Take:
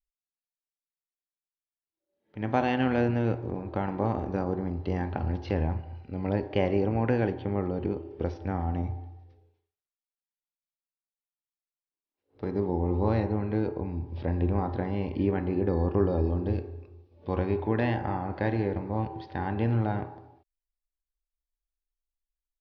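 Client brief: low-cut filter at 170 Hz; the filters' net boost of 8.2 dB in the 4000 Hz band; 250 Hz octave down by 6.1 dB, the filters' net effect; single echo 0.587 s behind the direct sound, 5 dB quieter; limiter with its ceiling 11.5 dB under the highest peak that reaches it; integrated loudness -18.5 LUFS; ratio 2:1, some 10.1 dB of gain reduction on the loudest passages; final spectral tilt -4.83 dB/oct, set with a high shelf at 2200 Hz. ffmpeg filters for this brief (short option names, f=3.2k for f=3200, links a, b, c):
-af "highpass=170,equalizer=f=250:t=o:g=-7,highshelf=f=2.2k:g=4.5,equalizer=f=4k:t=o:g=7.5,acompressor=threshold=-41dB:ratio=2,alimiter=level_in=6.5dB:limit=-24dB:level=0:latency=1,volume=-6.5dB,aecho=1:1:587:0.562,volume=24dB"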